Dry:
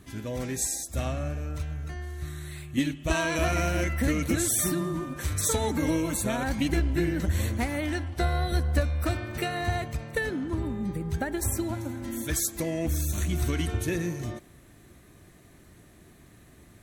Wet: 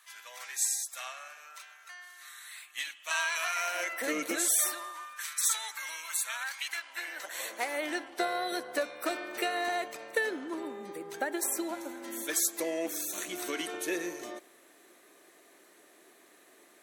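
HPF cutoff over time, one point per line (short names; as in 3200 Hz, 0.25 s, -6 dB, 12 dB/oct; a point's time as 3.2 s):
HPF 24 dB/oct
3.54 s 1000 Hz
4.19 s 330 Hz
5.23 s 1200 Hz
6.64 s 1200 Hz
7.93 s 360 Hz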